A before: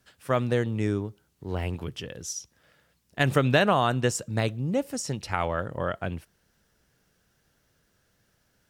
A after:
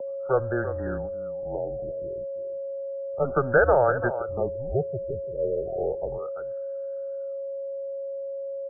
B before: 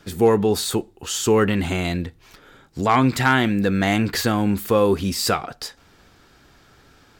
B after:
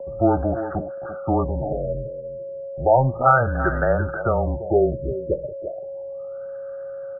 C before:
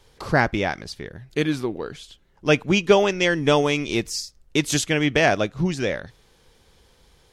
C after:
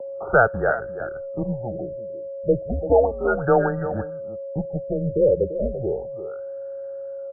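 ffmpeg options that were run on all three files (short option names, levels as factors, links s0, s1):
-filter_complex "[0:a]lowshelf=f=220:g=4.5,aecho=1:1:1.3:0.99,asplit=2[s0][s1];[s1]adelay=340,highpass=300,lowpass=3400,asoftclip=type=hard:threshold=0.355,volume=0.282[s2];[s0][s2]amix=inputs=2:normalize=0,aeval=exprs='val(0)+0.0316*sin(2*PI*680*n/s)':c=same,acrossover=split=350|950|2100[s3][s4][s5][s6];[s3]aeval=exprs='clip(val(0),-1,0.119)':c=same[s7];[s7][s4][s5][s6]amix=inputs=4:normalize=0,highpass=f=250:t=q:w=0.5412,highpass=f=250:t=q:w=1.307,lowpass=f=3400:t=q:w=0.5176,lowpass=f=3400:t=q:w=0.7071,lowpass=f=3400:t=q:w=1.932,afreqshift=-130,afftfilt=real='re*lt(b*sr/1024,590*pow(1900/590,0.5+0.5*sin(2*PI*0.33*pts/sr)))':imag='im*lt(b*sr/1024,590*pow(1900/590,0.5+0.5*sin(2*PI*0.33*pts/sr)))':win_size=1024:overlap=0.75"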